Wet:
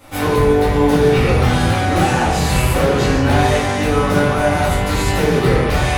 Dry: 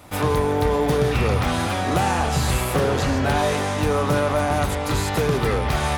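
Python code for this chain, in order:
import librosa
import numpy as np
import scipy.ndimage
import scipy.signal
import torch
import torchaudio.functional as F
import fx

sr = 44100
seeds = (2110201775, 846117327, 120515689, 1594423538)

y = fx.room_shoebox(x, sr, seeds[0], volume_m3=140.0, walls='mixed', distance_m=2.2)
y = y * 10.0 ** (-3.0 / 20.0)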